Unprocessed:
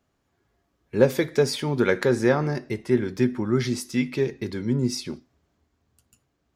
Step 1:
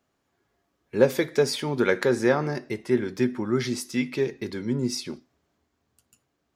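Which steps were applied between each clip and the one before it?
bass shelf 120 Hz -11 dB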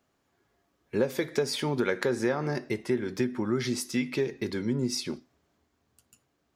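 compression 4:1, threshold -25 dBFS, peak gain reduction 11 dB; trim +1 dB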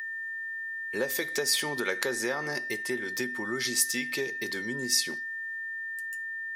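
whistle 1.8 kHz -34 dBFS; RIAA curve recording; trim -1.5 dB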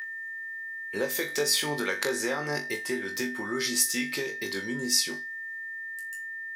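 flutter echo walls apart 3.5 m, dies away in 0.23 s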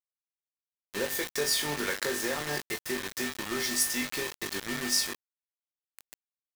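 bit crusher 5-bit; trim -3 dB

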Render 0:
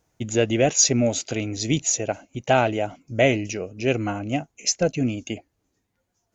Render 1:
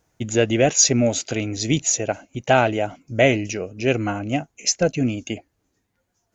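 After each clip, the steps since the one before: peaking EQ 1.6 kHz +2.5 dB 0.58 oct; trim +2 dB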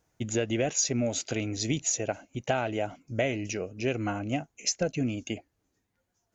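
compression 6:1, threshold -18 dBFS, peak gain reduction 8 dB; trim -5.5 dB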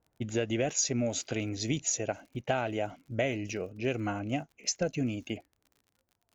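level-controlled noise filter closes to 1.1 kHz, open at -25 dBFS; crackle 49 per s -47 dBFS; trim -2 dB

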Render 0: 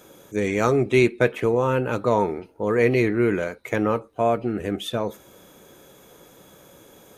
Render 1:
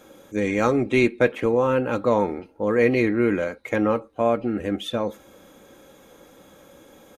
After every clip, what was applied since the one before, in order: treble shelf 6.7 kHz -8.5 dB; comb 3.7 ms, depth 41%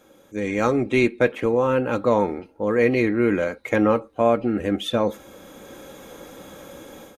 level rider gain up to 13.5 dB; trim -5 dB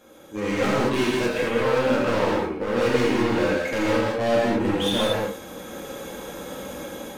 overload inside the chain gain 25.5 dB; gated-style reverb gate 250 ms flat, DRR -5.5 dB

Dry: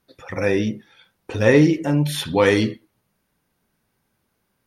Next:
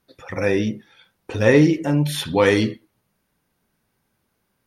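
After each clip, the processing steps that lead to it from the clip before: no audible change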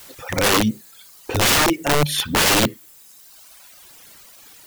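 word length cut 8-bit, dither triangular; reverb removal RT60 1.4 s; integer overflow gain 16.5 dB; trim +5.5 dB

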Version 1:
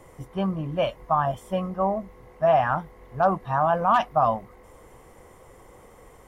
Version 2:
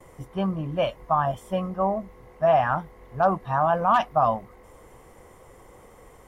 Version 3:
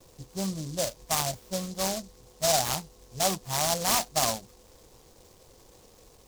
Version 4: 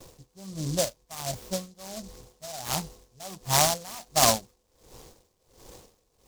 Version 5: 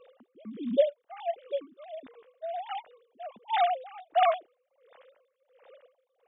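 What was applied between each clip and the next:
gate with hold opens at -48 dBFS
delay time shaken by noise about 5.6 kHz, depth 0.18 ms; trim -5.5 dB
logarithmic tremolo 1.4 Hz, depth 24 dB; trim +7.5 dB
formants replaced by sine waves; trim -1.5 dB

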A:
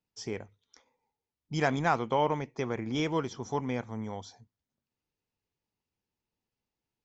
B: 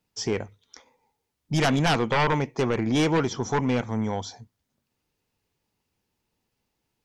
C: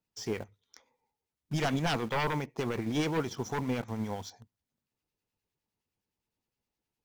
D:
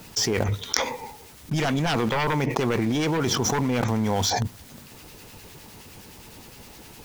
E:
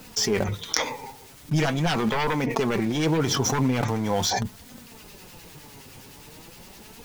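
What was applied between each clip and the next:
sine folder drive 12 dB, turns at -12.5 dBFS; trim -5 dB
harmonic tremolo 9.7 Hz, depth 50%, crossover 1.3 kHz; in parallel at -8 dB: bit crusher 6-bit; on the sum: trim -8.5 dB
level flattener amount 100%; trim +3 dB
flange 0.42 Hz, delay 3.8 ms, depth 4 ms, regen +39%; trim +3.5 dB

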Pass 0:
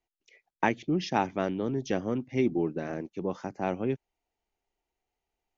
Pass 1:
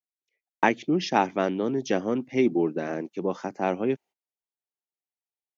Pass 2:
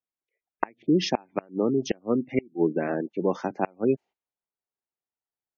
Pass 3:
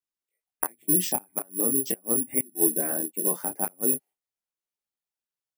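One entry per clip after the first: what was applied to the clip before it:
high-pass 200 Hz 12 dB/octave; gate -53 dBFS, range -25 dB; trim +5 dB
inverted gate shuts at -13 dBFS, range -32 dB; spectral gate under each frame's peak -25 dB strong; level-controlled noise filter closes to 1.5 kHz, open at -21.5 dBFS; trim +3 dB
careless resampling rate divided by 4×, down none, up zero stuff; detune thickener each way 14 cents; trim -2.5 dB

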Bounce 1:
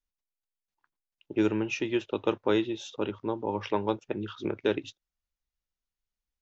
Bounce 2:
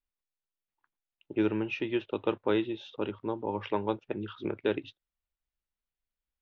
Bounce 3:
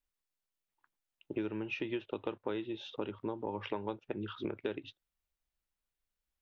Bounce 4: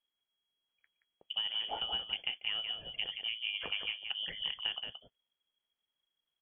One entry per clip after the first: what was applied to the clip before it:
low-pass 3.8 kHz 24 dB/octave; trim -2 dB
compression, threshold -35 dBFS, peak gain reduction 12.5 dB; trim +1.5 dB
delay 175 ms -7 dB; frequency inversion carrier 3.3 kHz

